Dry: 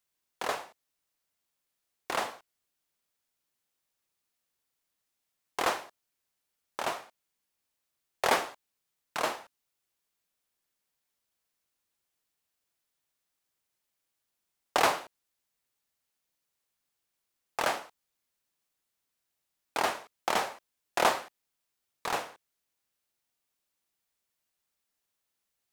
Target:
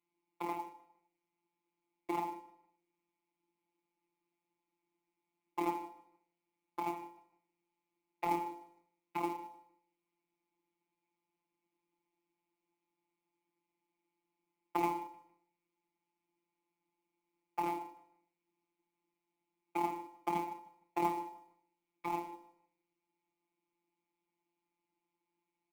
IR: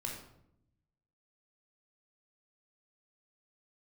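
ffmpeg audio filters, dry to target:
-filter_complex "[0:a]asplit=3[a][b][c];[a]bandpass=f=300:t=q:w=8,volume=0dB[d];[b]bandpass=f=870:t=q:w=8,volume=-6dB[e];[c]bandpass=f=2.24k:t=q:w=8,volume=-9dB[f];[d][e][f]amix=inputs=3:normalize=0,lowshelf=f=67:g=4.5,bandreject=f=54.39:t=h:w=4,bandreject=f=108.78:t=h:w=4,bandreject=f=163.17:t=h:w=4,bandreject=f=217.56:t=h:w=4,bandreject=f=271.95:t=h:w=4,bandreject=f=326.34:t=h:w=4,bandreject=f=380.73:t=h:w=4,bandreject=f=435.12:t=h:w=4,bandreject=f=489.51:t=h:w=4,bandreject=f=543.9:t=h:w=4,bandreject=f=598.29:t=h:w=4,bandreject=f=652.68:t=h:w=4,bandreject=f=707.07:t=h:w=4,bandreject=f=761.46:t=h:w=4,bandreject=f=815.85:t=h:w=4,bandreject=f=870.24:t=h:w=4,bandreject=f=924.63:t=h:w=4,bandreject=f=979.02:t=h:w=4,acrossover=split=140[g][h];[h]acompressor=threshold=-59dB:ratio=2[i];[g][i]amix=inputs=2:normalize=0,tiltshelf=f=1.4k:g=7,acrusher=bits=5:mode=log:mix=0:aa=0.000001,afftfilt=real='hypot(re,im)*cos(PI*b)':imag='0':win_size=1024:overlap=0.75,asplit=2[j][k];[k]adelay=153,lowpass=f=3.6k:p=1,volume=-17dB,asplit=2[l][m];[m]adelay=153,lowpass=f=3.6k:p=1,volume=0.31,asplit=2[n][o];[o]adelay=153,lowpass=f=3.6k:p=1,volume=0.31[p];[l][n][p]amix=inputs=3:normalize=0[q];[j][q]amix=inputs=2:normalize=0,volume=17.5dB"

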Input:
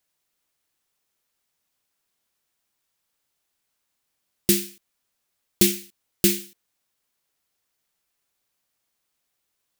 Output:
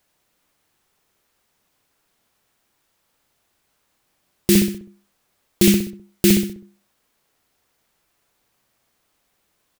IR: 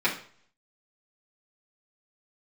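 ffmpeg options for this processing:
-filter_complex "[0:a]highshelf=f=2.5k:g=-7.5,asplit=2[a][b];[b]adelay=64,lowpass=f=1.2k:p=1,volume=-6.5dB,asplit=2[c][d];[d]adelay=64,lowpass=f=1.2k:p=1,volume=0.48,asplit=2[e][f];[f]adelay=64,lowpass=f=1.2k:p=1,volume=0.48,asplit=2[g][h];[h]adelay=64,lowpass=f=1.2k:p=1,volume=0.48,asplit=2[i][j];[j]adelay=64,lowpass=f=1.2k:p=1,volume=0.48,asplit=2[k][l];[l]adelay=64,lowpass=f=1.2k:p=1,volume=0.48[m];[a][c][e][g][i][k][m]amix=inputs=7:normalize=0,alimiter=level_in=16dB:limit=-1dB:release=50:level=0:latency=1,volume=-2.5dB"

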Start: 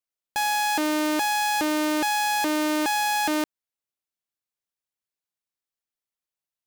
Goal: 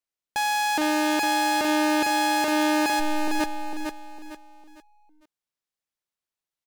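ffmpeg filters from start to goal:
-filter_complex "[0:a]asplit=3[a][b][c];[a]afade=t=out:st=2.99:d=0.02[d];[b]aeval=exprs='abs(val(0))':c=same,afade=t=in:st=2.99:d=0.02,afade=t=out:st=3.39:d=0.02[e];[c]afade=t=in:st=3.39:d=0.02[f];[d][e][f]amix=inputs=3:normalize=0,highshelf=f=11k:g=-7,asplit=2[g][h];[h]aecho=0:1:454|908|1362|1816:0.562|0.191|0.065|0.0221[i];[g][i]amix=inputs=2:normalize=0"

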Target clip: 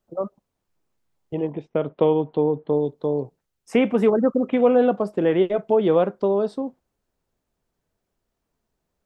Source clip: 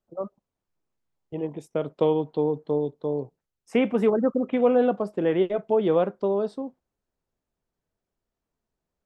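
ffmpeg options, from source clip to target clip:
-filter_complex "[0:a]asettb=1/sr,asplit=3[a][b][c];[a]atrim=end=1.504[d];[b]atrim=start=1.5:end=2.73,asetpts=PTS-STARTPTS,afade=t=in:d=0.004:c=qsin,afade=t=out:st=1.226:d=0.004:c=qsin,lowpass=f=3.3k:w=0.5412,lowpass=f=3.3k:w=1.3066[e];[c]atrim=start=2.726[f];[d][e]acrossfade=d=0.004:c1=hsin:c2=qsin[g];[g][f]acrossfade=d=0.004:c1=qsin:c2=hsin,asplit=2[h][i];[i]acompressor=threshold=-32dB:ratio=6,volume=-3dB[j];[h][j]amix=inputs=2:normalize=0,volume=2dB"

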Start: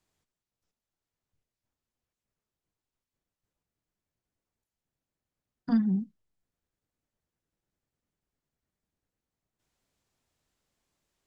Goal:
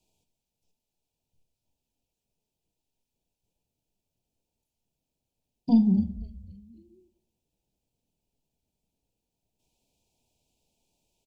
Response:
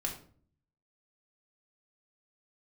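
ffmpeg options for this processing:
-filter_complex "[0:a]asuperstop=centerf=1500:order=20:qfactor=1.1,asplit=5[a][b][c][d][e];[b]adelay=263,afreqshift=-140,volume=-18dB[f];[c]adelay=526,afreqshift=-280,volume=-24.6dB[g];[d]adelay=789,afreqshift=-420,volume=-31.1dB[h];[e]adelay=1052,afreqshift=-560,volume=-37.7dB[i];[a][f][g][h][i]amix=inputs=5:normalize=0,asplit=2[j][k];[1:a]atrim=start_sample=2205,asetrate=34398,aresample=44100[l];[k][l]afir=irnorm=-1:irlink=0,volume=-10.5dB[m];[j][m]amix=inputs=2:normalize=0,volume=2dB"

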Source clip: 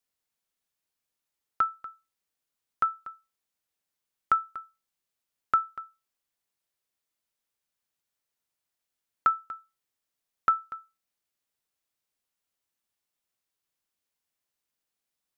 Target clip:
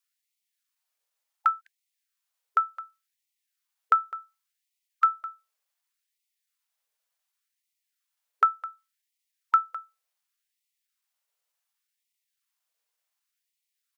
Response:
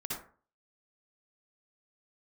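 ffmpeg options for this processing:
-af "atempo=1.1,afftfilt=real='re*gte(b*sr/1024,390*pow(1900/390,0.5+0.5*sin(2*PI*0.68*pts/sr)))':imag='im*gte(b*sr/1024,390*pow(1900/390,0.5+0.5*sin(2*PI*0.68*pts/sr)))':win_size=1024:overlap=0.75,volume=3dB"

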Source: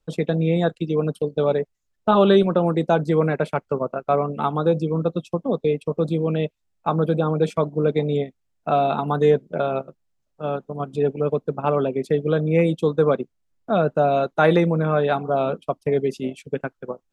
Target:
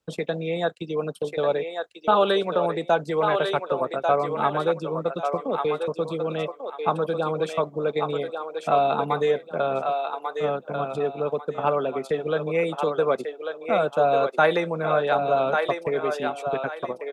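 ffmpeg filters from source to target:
-filter_complex "[0:a]highpass=91,acrossover=split=470[a][b];[a]acompressor=threshold=-32dB:ratio=10[c];[b]aecho=1:1:1143|2286|3429|4572:0.596|0.155|0.0403|0.0105[d];[c][d]amix=inputs=2:normalize=0"

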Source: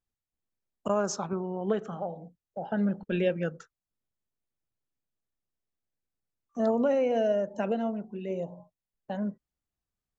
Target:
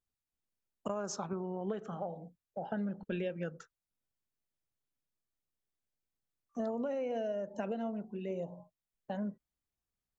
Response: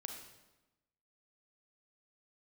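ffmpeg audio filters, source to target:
-af "acompressor=threshold=-30dB:ratio=6,volume=-3dB"

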